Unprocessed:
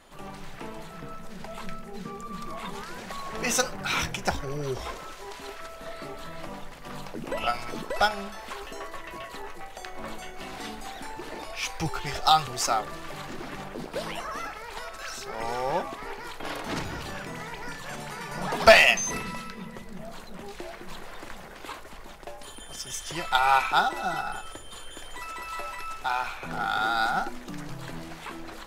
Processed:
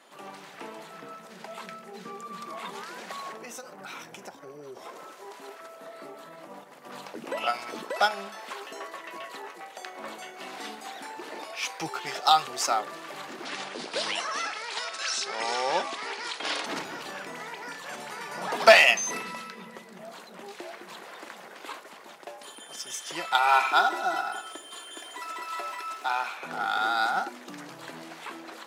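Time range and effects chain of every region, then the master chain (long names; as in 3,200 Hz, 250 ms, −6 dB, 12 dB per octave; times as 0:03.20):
0:03.32–0:06.92: parametric band 3,500 Hz −7.5 dB 2.7 octaves + downward compressor 16 to 1, threshold −35 dBFS
0:13.45–0:16.66: linear-phase brick-wall low-pass 11,000 Hz + parametric band 4,600 Hz +11.5 dB 2.3 octaves
0:23.48–0:26.06: high-pass filter 96 Hz + comb filter 2.9 ms, depth 49% + feedback echo at a low word length 84 ms, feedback 35%, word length 8 bits, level −13.5 dB
whole clip: Bessel high-pass filter 300 Hz, order 4; high-shelf EQ 11,000 Hz −4 dB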